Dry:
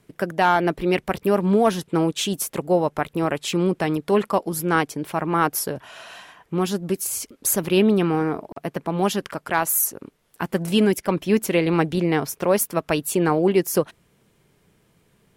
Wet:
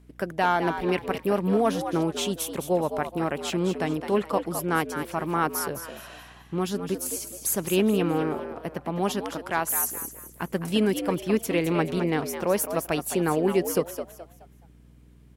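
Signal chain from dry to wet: hum 60 Hz, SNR 26 dB; frequency-shifting echo 0.212 s, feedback 32%, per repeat +81 Hz, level -9 dB; gain -5 dB

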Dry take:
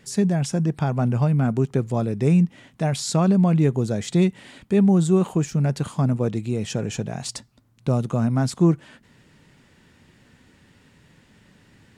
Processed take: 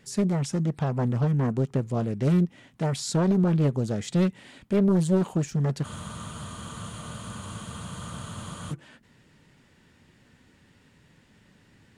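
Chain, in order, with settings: spectral freeze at 5.88, 2.83 s; Doppler distortion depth 0.56 ms; gain -4 dB

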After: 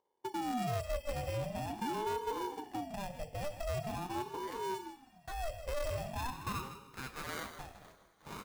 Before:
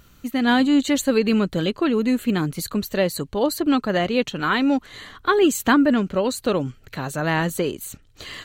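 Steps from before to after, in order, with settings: nonlinear frequency compression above 3000 Hz 1.5:1; notches 50/100/150/200 Hz; gate -37 dBFS, range -14 dB; 4.56–5.51 RIAA curve recording; in parallel at +2 dB: compressor, threshold -31 dBFS, peak gain reduction 17.5 dB; on the sum: band-pass sweep 270 Hz -> 1900 Hz, 5.81–7.89; sample-and-hold 17×; two-slope reverb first 0.37 s, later 2.9 s, from -18 dB, DRR 9 dB; soft clip -22 dBFS, distortion -7 dB; on a send: echo 0.158 s -11 dB; on the sum: ring modulator with a swept carrier 490 Hz, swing 40%, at 0.44 Hz; gain -8.5 dB

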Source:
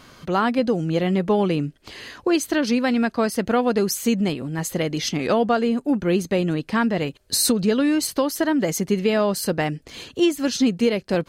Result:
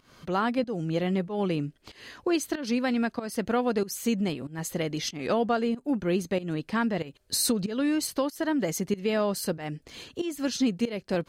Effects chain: pump 94 bpm, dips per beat 1, -17 dB, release 0.226 s; gain -6 dB

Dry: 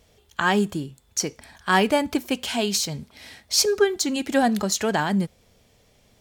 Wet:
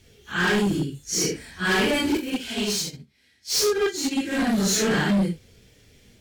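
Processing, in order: phase scrambler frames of 0.2 s; high shelf 6800 Hz -3.5 dB; soft clip -14.5 dBFS, distortion -17 dB; band shelf 830 Hz -10 dB 1.3 oct; hard clip -24 dBFS, distortion -10 dB; 2.17–4.58 upward expander 2.5:1, over -40 dBFS; gain +6 dB

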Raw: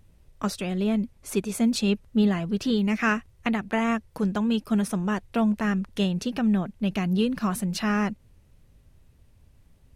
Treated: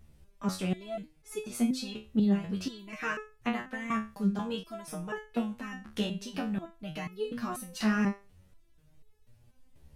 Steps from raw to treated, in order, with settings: in parallel at +3 dB: compressor, threshold -30 dBFS, peak gain reduction 12.5 dB; on the sum: stepped resonator 4.1 Hz 72–430 Hz

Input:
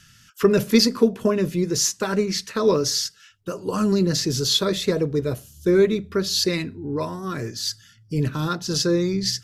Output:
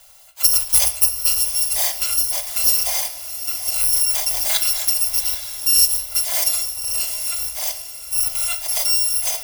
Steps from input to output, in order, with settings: FFT order left unsorted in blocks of 256 samples; passive tone stack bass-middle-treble 10-0-10; in parallel at -2 dB: compressor, threshold -29 dBFS, peak gain reduction 17 dB; on the sum: band shelf 620 Hz +12.5 dB; on a send: diffused feedback echo 0.774 s, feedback 43%, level -11 dB; on the sum: shoebox room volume 290 m³, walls mixed, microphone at 0.46 m

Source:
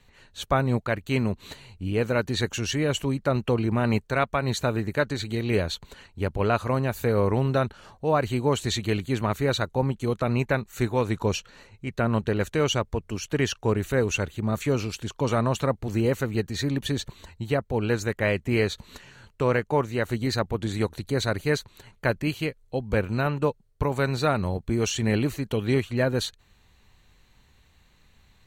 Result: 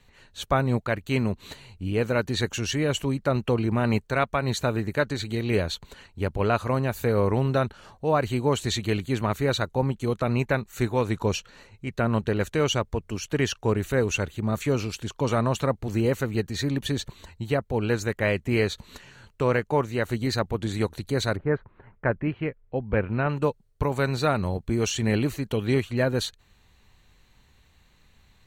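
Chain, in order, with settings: 21.35–23.28 LPF 1500 Hz -> 2900 Hz 24 dB/oct

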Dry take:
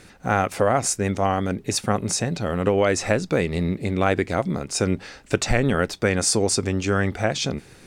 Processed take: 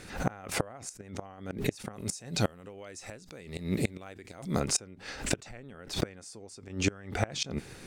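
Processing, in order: 1.93–4.6 high shelf 4100 Hz +12 dB; flipped gate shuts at -13 dBFS, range -27 dB; backwards sustainer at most 120 dB/s

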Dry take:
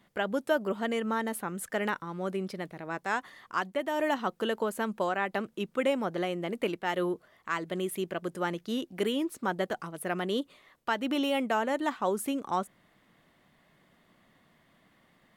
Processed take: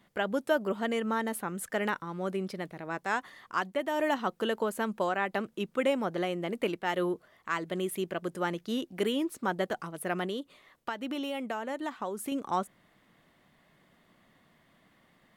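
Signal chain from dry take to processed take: 10.25–12.32 compressor 5:1, threshold -32 dBFS, peak gain reduction 8.5 dB

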